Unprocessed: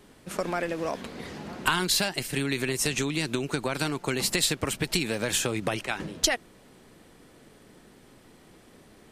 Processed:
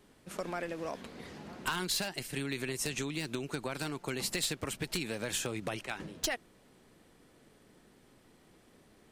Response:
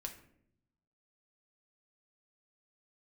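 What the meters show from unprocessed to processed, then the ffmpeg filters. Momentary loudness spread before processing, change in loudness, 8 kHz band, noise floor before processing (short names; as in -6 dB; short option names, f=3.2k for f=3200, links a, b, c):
9 LU, -8.5 dB, -8.5 dB, -55 dBFS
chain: -af "aeval=exprs='0.178*(abs(mod(val(0)/0.178+3,4)-2)-1)':c=same,volume=-8dB"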